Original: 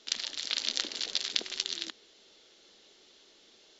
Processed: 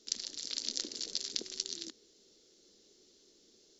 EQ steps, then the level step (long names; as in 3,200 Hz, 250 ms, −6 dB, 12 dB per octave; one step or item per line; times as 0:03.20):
flat-topped bell 1,500 Hz −14 dB 2.9 octaves
0.0 dB